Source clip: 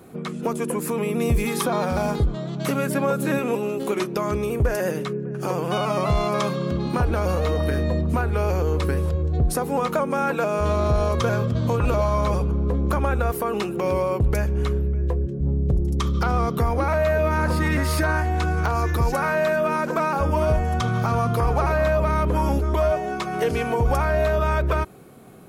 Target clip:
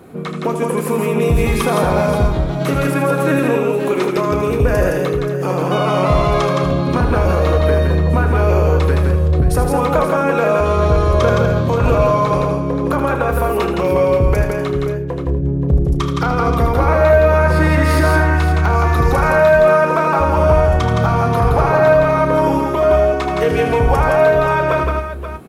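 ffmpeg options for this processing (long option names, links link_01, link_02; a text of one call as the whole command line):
ffmpeg -i in.wav -filter_complex "[0:a]bass=frequency=250:gain=-1,treble=frequency=4000:gain=-6,asplit=2[link_01][link_02];[link_02]adelay=32,volume=-11.5dB[link_03];[link_01][link_03]amix=inputs=2:normalize=0,asplit=2[link_04][link_05];[link_05]aecho=0:1:79|166|245|529:0.398|0.668|0.211|0.299[link_06];[link_04][link_06]amix=inputs=2:normalize=0,volume=5.5dB" out.wav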